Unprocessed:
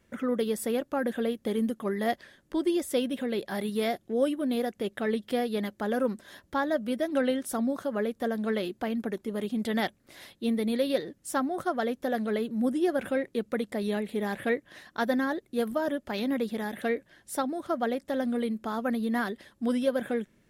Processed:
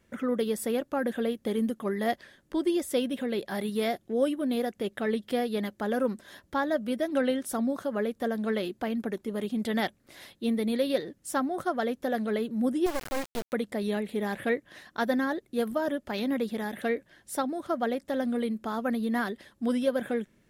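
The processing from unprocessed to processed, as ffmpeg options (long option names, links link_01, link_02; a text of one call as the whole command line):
ffmpeg -i in.wav -filter_complex "[0:a]asettb=1/sr,asplit=3[link_01][link_02][link_03];[link_01]atrim=end=12.864[link_04];[link_02]atrim=start=12.86:end=13.53,asetpts=PTS-STARTPTS,afade=type=in:duration=0.004:curve=qsin,afade=type=out:start_time=0.666:duration=0.004:curve=qsin,acrusher=bits=3:dc=4:mix=0:aa=0.000001[link_05];[link_03]atrim=start=13.526[link_06];[link_04][link_05]acrossfade=duration=0.004:curve1=hsin:curve2=qsin[link_07];[link_07][link_06]acrossfade=duration=0.004:curve1=qsin:curve2=hsin" out.wav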